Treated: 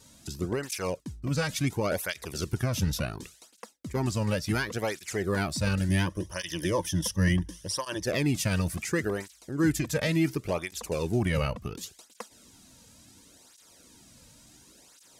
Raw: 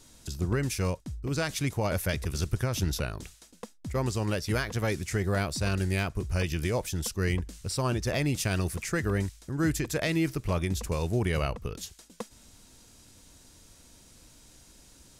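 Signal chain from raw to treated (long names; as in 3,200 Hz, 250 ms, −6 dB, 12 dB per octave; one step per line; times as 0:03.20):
0:05.88–0:08.03: EQ curve with evenly spaced ripples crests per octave 1.2, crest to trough 11 dB
through-zero flanger with one copy inverted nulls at 0.7 Hz, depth 3 ms
level +3.5 dB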